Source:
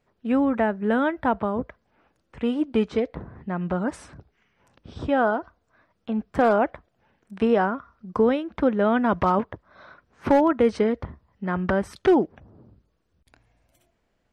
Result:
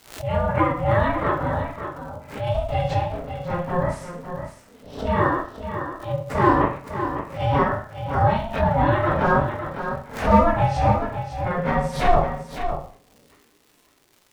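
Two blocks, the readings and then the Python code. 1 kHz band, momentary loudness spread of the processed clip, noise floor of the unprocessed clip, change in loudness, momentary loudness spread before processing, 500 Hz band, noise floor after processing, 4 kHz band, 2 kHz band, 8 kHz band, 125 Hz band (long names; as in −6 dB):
+5.5 dB, 12 LU, −72 dBFS, +1.0 dB, 12 LU, 0.0 dB, −59 dBFS, +4.0 dB, +3.0 dB, can't be measured, +11.5 dB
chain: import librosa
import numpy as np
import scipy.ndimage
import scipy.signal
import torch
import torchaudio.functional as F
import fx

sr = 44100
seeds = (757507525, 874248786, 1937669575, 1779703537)

p1 = fx.phase_scramble(x, sr, seeds[0], window_ms=100)
p2 = fx.dmg_crackle(p1, sr, seeds[1], per_s=280.0, level_db=-45.0)
p3 = fx.rev_schroeder(p2, sr, rt60_s=0.44, comb_ms=33, drr_db=6.0)
p4 = p3 * np.sin(2.0 * np.pi * 350.0 * np.arange(len(p3)) / sr)
p5 = p4 + fx.echo_single(p4, sr, ms=555, db=-9.0, dry=0)
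p6 = fx.pre_swell(p5, sr, db_per_s=120.0)
y = p6 * 10.0 ** (3.5 / 20.0)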